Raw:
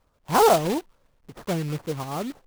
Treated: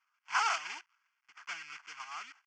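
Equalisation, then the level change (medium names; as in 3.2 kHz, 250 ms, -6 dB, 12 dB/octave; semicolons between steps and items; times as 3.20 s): resonant high-pass 1.7 kHz, resonance Q 9.9; low-pass 6.4 kHz 24 dB/octave; static phaser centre 2.6 kHz, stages 8; -5.0 dB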